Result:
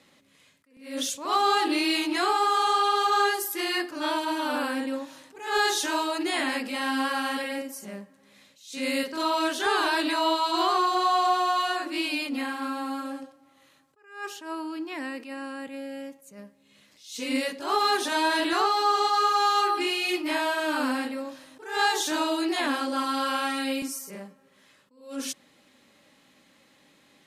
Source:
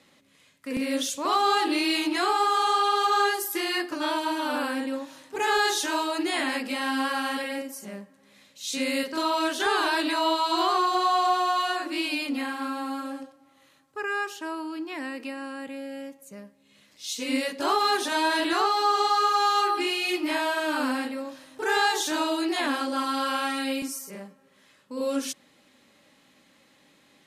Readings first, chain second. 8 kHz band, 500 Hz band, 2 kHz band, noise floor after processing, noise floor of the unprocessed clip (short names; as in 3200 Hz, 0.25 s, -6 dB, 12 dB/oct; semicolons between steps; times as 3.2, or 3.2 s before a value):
-0.5 dB, -1.0 dB, -0.5 dB, -61 dBFS, -61 dBFS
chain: attack slew limiter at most 120 dB/s